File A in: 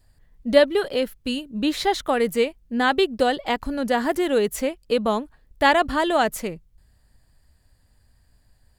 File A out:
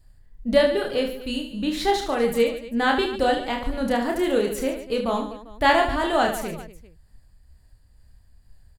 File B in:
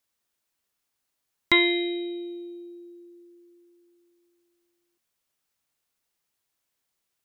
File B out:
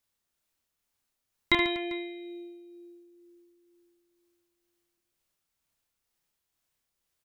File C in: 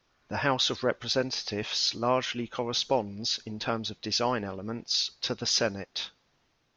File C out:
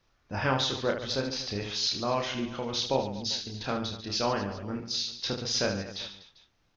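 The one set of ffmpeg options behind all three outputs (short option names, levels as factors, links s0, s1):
-af "lowshelf=f=100:g=10,tremolo=f=2.1:d=0.3,aecho=1:1:30|75|142.5|243.8|395.6:0.631|0.398|0.251|0.158|0.1,volume=0.75"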